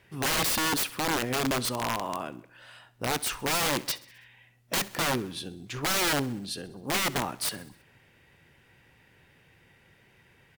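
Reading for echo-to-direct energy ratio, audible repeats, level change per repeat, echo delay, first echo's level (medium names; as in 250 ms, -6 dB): -18.0 dB, 4, -4.5 dB, 65 ms, -20.0 dB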